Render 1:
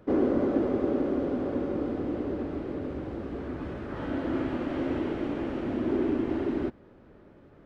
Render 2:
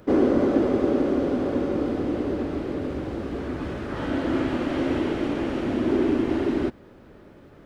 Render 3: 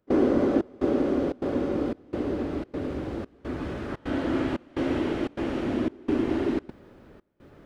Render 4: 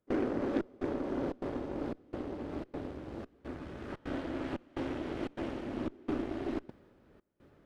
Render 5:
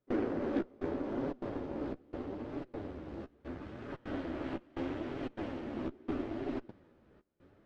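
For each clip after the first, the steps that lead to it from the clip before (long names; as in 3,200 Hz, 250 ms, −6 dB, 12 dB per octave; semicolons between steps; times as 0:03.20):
high-shelf EQ 3,600 Hz +10.5 dB; level +5 dB
gate pattern ".xxxxx..xxxxx" 148 BPM −24 dB; level −2 dB
amplitude tremolo 1.5 Hz, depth 39%; harmonic generator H 8 −20 dB, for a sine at −12.5 dBFS; level −8 dB
flanger 0.77 Hz, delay 6.8 ms, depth 8.5 ms, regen −16%; high-frequency loss of the air 65 metres; level +2 dB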